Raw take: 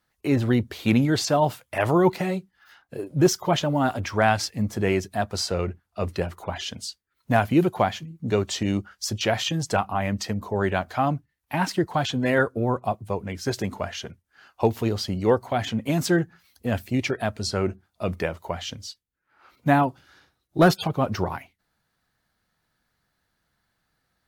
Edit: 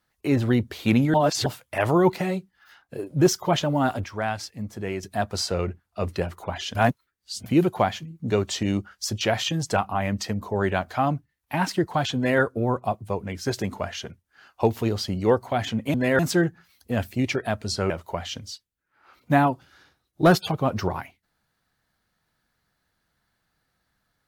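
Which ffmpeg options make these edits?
-filter_complex "[0:a]asplit=10[a][b][c][d][e][f][g][h][i][j];[a]atrim=end=1.142[k];[b]atrim=start=1.138:end=1.462,asetpts=PTS-STARTPTS,areverse[l];[c]atrim=start=1.458:end=4.042[m];[d]atrim=start=4.038:end=5.032,asetpts=PTS-STARTPTS,volume=-7.5dB[n];[e]atrim=start=5.028:end=6.752[o];[f]atrim=start=6.748:end=7.462,asetpts=PTS-STARTPTS,areverse[p];[g]atrim=start=7.458:end=15.942[q];[h]atrim=start=12.158:end=12.412[r];[i]atrim=start=15.938:end=17.652[s];[j]atrim=start=18.258[t];[k][l]acrossfade=d=0.004:c1=hsin:c2=hsin[u];[u][m]acrossfade=d=0.004:c1=hsin:c2=hsin[v];[v][n]acrossfade=d=0.004:c1=hsin:c2=hsin[w];[w][o]acrossfade=d=0.004:c1=hsin:c2=hsin[x];[x][p]acrossfade=d=0.004:c1=hsin:c2=hsin[y];[y][q]acrossfade=d=0.004:c1=hsin:c2=hsin[z];[z][r]acrossfade=d=0.004:c1=hsin:c2=hsin[aa];[aa][s]acrossfade=d=0.004:c1=hsin:c2=hsin[ab];[ab][t]acrossfade=d=0.004:c1=hsin:c2=hsin"

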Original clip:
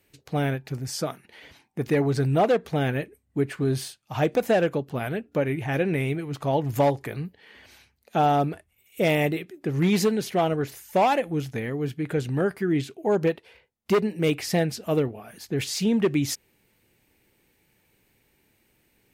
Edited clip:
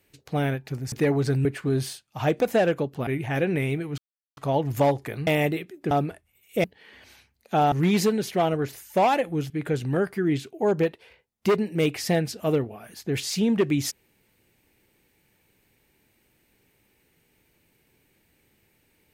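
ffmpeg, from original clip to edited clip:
-filter_complex "[0:a]asplit=10[a][b][c][d][e][f][g][h][i][j];[a]atrim=end=0.922[k];[b]atrim=start=1.818:end=2.352[l];[c]atrim=start=3.398:end=5.022[m];[d]atrim=start=5.448:end=6.36,asetpts=PTS-STARTPTS,afade=t=out:st=0.908:d=0.004:c=hsin,apad=pad_dur=0.39[n];[e]atrim=start=6.36:end=7.262,asetpts=PTS-STARTPTS,afade=t=in:d=0.004:c=hsin[o];[f]atrim=start=9.068:end=9.712[p];[g]atrim=start=8.338:end=9.072[q];[h]atrim=start=7.258:end=8.342[r];[i]atrim=start=9.708:end=11.492[s];[j]atrim=start=11.938[t];[k][l]acrossfade=d=0.004:c1=hsin:c2=hsin[u];[u][m]acrossfade=d=0.004:c1=hsin:c2=hsin[v];[n][o]concat=n=2:v=0:a=1[w];[v][w]acrossfade=d=0.004:c1=hsin:c2=hsin[x];[x][p]acrossfade=d=0.004:c1=hsin:c2=hsin[y];[y][q]acrossfade=d=0.004:c1=hsin:c2=hsin[z];[z][r]acrossfade=d=0.004:c1=hsin:c2=hsin[aa];[aa][s]acrossfade=d=0.004:c1=hsin:c2=hsin[ab];[ab][t]acrossfade=d=0.004:c1=hsin:c2=hsin"

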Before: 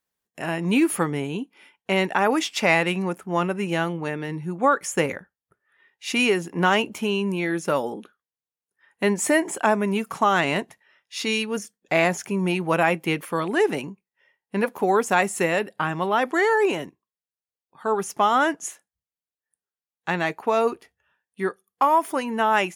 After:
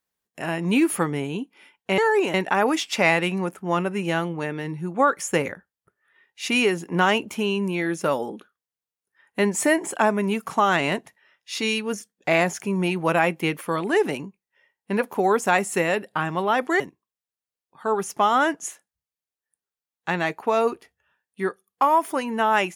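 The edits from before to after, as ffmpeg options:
-filter_complex "[0:a]asplit=4[a][b][c][d];[a]atrim=end=1.982[e];[b]atrim=start=16.438:end=16.802[f];[c]atrim=start=1.978:end=16.442[g];[d]atrim=start=16.798[h];[e][f]acrossfade=d=0.004:c1=hsin:c2=hsin[i];[i][g]acrossfade=d=0.004:c1=hsin:c2=hsin[j];[j][h]acrossfade=d=0.004:c1=hsin:c2=hsin"

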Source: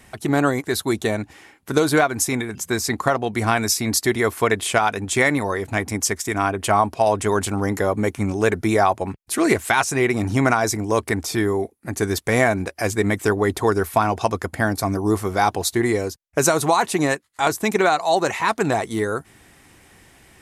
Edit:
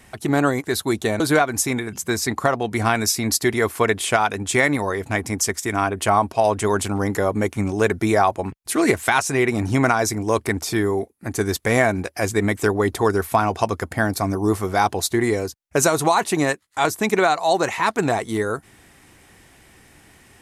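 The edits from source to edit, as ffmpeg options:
-filter_complex "[0:a]asplit=2[a][b];[a]atrim=end=1.202[c];[b]atrim=start=1.818[d];[c][d]acrossfade=d=0.004:c1=hsin:c2=hsin"

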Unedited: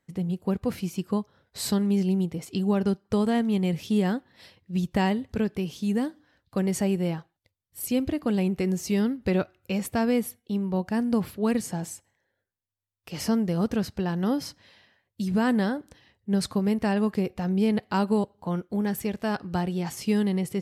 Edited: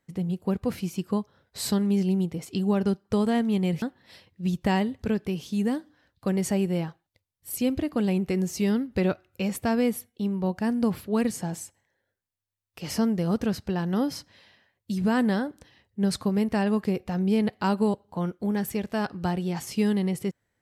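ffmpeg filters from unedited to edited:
-filter_complex "[0:a]asplit=2[a][b];[a]atrim=end=3.822[c];[b]atrim=start=4.118[d];[c][d]acrossfade=d=0.004:c1=hsin:c2=hsin"

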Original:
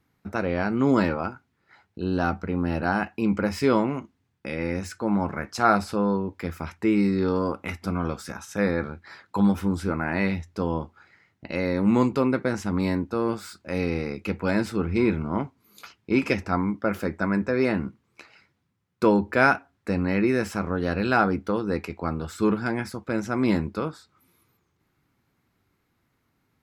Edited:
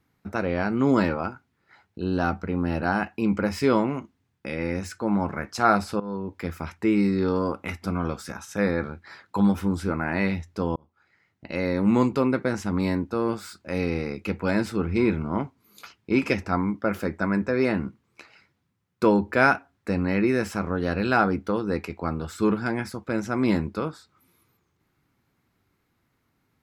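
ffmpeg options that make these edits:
-filter_complex "[0:a]asplit=3[a][b][c];[a]atrim=end=6,asetpts=PTS-STARTPTS,afade=t=out:st=5.996:d=0.004:c=hsin:silence=0.141254[d];[b]atrim=start=6:end=10.76,asetpts=PTS-STARTPTS,afade=t=in:d=0.37:silence=0.141254,afade=t=out:st=4.756:d=0.004:c=hsin[e];[c]atrim=start=10.76,asetpts=PTS-STARTPTS,afade=t=in:d=0.88[f];[d][e][f]concat=n=3:v=0:a=1"

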